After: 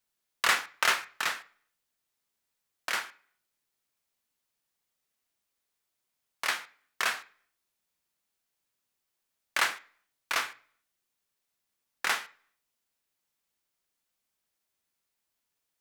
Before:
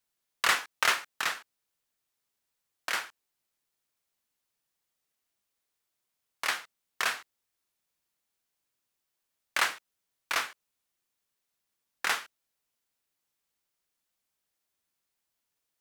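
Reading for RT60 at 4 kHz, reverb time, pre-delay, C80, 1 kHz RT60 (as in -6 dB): 0.45 s, 0.55 s, 3 ms, 22.0 dB, 0.50 s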